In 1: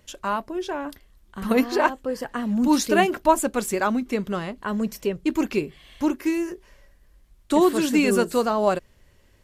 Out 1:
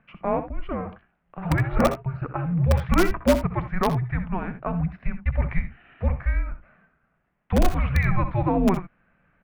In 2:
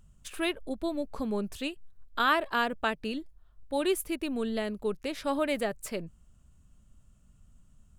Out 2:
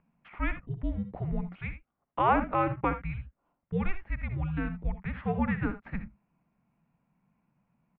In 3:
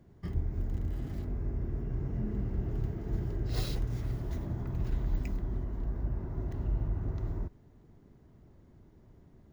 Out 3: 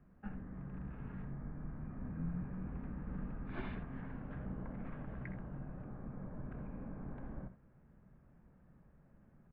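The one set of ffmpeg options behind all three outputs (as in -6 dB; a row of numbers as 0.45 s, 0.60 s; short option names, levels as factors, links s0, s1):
-filter_complex "[0:a]highpass=f=200:t=q:w=0.5412,highpass=f=200:t=q:w=1.307,lowpass=f=2600:t=q:w=0.5176,lowpass=f=2600:t=q:w=0.7071,lowpass=f=2600:t=q:w=1.932,afreqshift=-380,asplit=2[s0][s1];[s1]aeval=exprs='(mod(3.35*val(0)+1,2)-1)/3.35':c=same,volume=0.398[s2];[s0][s2]amix=inputs=2:normalize=0,equalizer=f=98:w=5.4:g=-11.5,aecho=1:1:64|80:0.224|0.188,volume=0.841"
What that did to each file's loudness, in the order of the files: -1.5 LU, -0.5 LU, -10.0 LU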